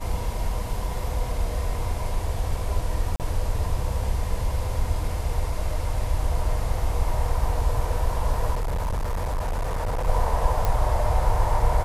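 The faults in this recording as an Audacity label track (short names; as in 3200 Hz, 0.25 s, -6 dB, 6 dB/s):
3.160000	3.200000	gap 38 ms
8.540000	10.080000	clipped -22.5 dBFS
10.650000	10.650000	pop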